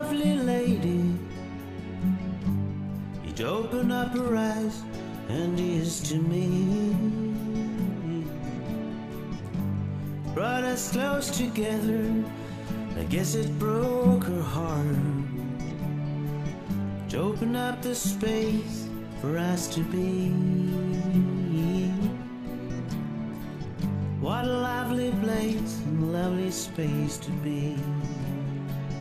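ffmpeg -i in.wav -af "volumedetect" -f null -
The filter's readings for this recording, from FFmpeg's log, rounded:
mean_volume: -27.8 dB
max_volume: -10.9 dB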